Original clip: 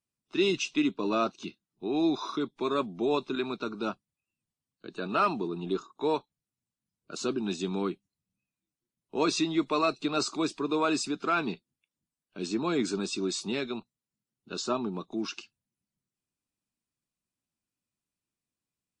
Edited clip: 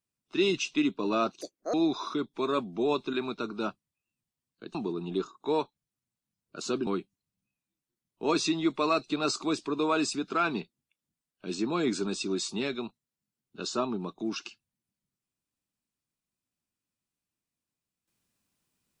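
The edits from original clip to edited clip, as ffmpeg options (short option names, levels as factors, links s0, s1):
-filter_complex "[0:a]asplit=5[s0][s1][s2][s3][s4];[s0]atrim=end=1.414[s5];[s1]atrim=start=1.41:end=1.96,asetpts=PTS-STARTPTS,asetrate=74088,aresample=44100[s6];[s2]atrim=start=1.956:end=4.972[s7];[s3]atrim=start=5.298:end=7.422[s8];[s4]atrim=start=7.788[s9];[s5][s6]acrossfade=d=0.004:c1=hsin:c2=hsin[s10];[s10][s7]acrossfade=d=0.004:c1=hsin:c2=hsin[s11];[s11][s8]acrossfade=d=0.004:c1=hsin:c2=hsin[s12];[s12][s9]acrossfade=d=0.004:c1=hsin:c2=hsin"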